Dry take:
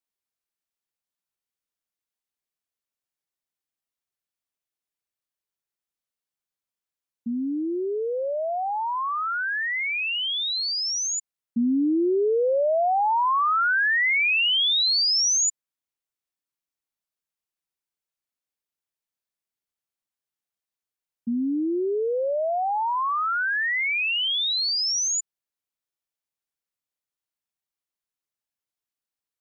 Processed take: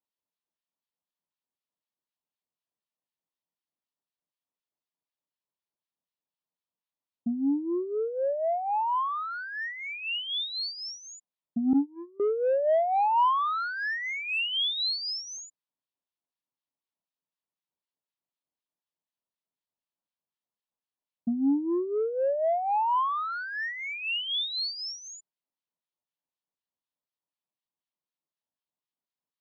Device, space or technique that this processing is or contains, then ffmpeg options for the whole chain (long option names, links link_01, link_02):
guitar amplifier with harmonic tremolo: -filter_complex "[0:a]acrossover=split=1200[link_01][link_02];[link_01]aeval=exprs='val(0)*(1-0.7/2+0.7/2*cos(2*PI*4*n/s))':channel_layout=same[link_03];[link_02]aeval=exprs='val(0)*(1-0.7/2-0.7/2*cos(2*PI*4*n/s))':channel_layout=same[link_04];[link_03][link_04]amix=inputs=2:normalize=0,asoftclip=type=tanh:threshold=-22.5dB,highpass=100,equalizer=frequency=170:width_type=q:width=4:gain=6,equalizer=frequency=270:width_type=q:width=4:gain=5,equalizer=frequency=610:width_type=q:width=4:gain=4,equalizer=frequency=960:width_type=q:width=4:gain=6,equalizer=frequency=1500:width_type=q:width=4:gain=-6,equalizer=frequency=2200:width_type=q:width=4:gain=-7,lowpass=frequency=4400:width=0.5412,lowpass=frequency=4400:width=1.3066,asettb=1/sr,asplit=3[link_05][link_06][link_07];[link_05]atrim=end=11.734[link_08];[link_06]atrim=start=11.73:end=12.2,asetpts=PTS-STARTPTS,afade=type=in:duration=0.004:curve=qsin,afade=type=out:start_time=0.466:duration=0.004:curve=qsin,agate=range=-25dB:threshold=-22dB:ratio=16:detection=peak[link_09];[link_07]atrim=start=12.196[link_10];[link_08][link_09]acrossfade=duration=0.004:curve1=hsin:curve2=qsin[link_11];[link_11][link_10]acrossfade=duration=0.004:curve1=qsin:curve2=hsin"